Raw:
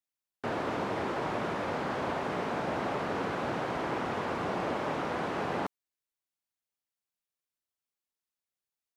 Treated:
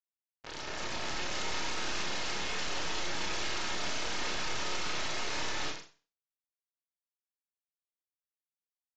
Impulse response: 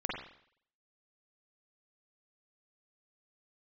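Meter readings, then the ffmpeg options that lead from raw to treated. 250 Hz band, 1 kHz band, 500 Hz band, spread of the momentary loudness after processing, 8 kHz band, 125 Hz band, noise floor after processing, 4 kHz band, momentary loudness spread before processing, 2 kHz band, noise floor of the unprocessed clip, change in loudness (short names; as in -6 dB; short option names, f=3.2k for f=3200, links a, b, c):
-10.0 dB, -6.5 dB, -9.5 dB, 5 LU, +15.5 dB, -8.0 dB, under -85 dBFS, +10.5 dB, 1 LU, +1.0 dB, under -85 dBFS, -1.5 dB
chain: -filter_complex "[0:a]dynaudnorm=f=220:g=13:m=8dB,alimiter=limit=-20dB:level=0:latency=1:release=67,asplit=2[a][b];[b]adelay=98,lowpass=f=4k:p=1,volume=-6dB,asplit=2[c][d];[d]adelay=98,lowpass=f=4k:p=1,volume=0.51,asplit=2[e][f];[f]adelay=98,lowpass=f=4k:p=1,volume=0.51,asplit=2[g][h];[h]adelay=98,lowpass=f=4k:p=1,volume=0.51,asplit=2[i][j];[j]adelay=98,lowpass=f=4k:p=1,volume=0.51,asplit=2[k][l];[l]adelay=98,lowpass=f=4k:p=1,volume=0.51[m];[a][c][e][g][i][k][m]amix=inputs=7:normalize=0,acrusher=bits=3:mix=0:aa=0.5,aeval=exprs='0.15*(cos(1*acos(clip(val(0)/0.15,-1,1)))-cos(1*PI/2))+0.0668*(cos(2*acos(clip(val(0)/0.15,-1,1)))-cos(2*PI/2))+0.0596*(cos(6*acos(clip(val(0)/0.15,-1,1)))-cos(6*PI/2))+0.00668*(cos(8*acos(clip(val(0)/0.15,-1,1)))-cos(8*PI/2))':c=same,aeval=exprs='(mod(11.2*val(0)+1,2)-1)/11.2':c=same[n];[1:a]atrim=start_sample=2205,asetrate=74970,aresample=44100[o];[n][o]afir=irnorm=-1:irlink=0,volume=30dB,asoftclip=hard,volume=-30dB,asplit=2[p][q];[q]adelay=34,volume=-11dB[r];[p][r]amix=inputs=2:normalize=0,aresample=16000,aresample=44100,volume=1dB" -ar 48000 -c:a libmp3lame -b:a 48k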